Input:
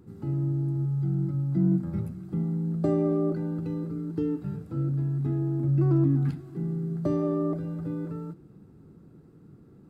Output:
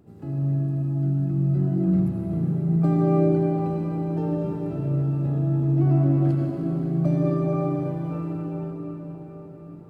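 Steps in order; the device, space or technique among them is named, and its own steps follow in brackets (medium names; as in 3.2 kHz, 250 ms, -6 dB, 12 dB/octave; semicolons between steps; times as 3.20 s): shimmer-style reverb (harmony voices +12 st -11 dB; reverberation RT60 5.6 s, pre-delay 65 ms, DRR -2.5 dB); trim -2.5 dB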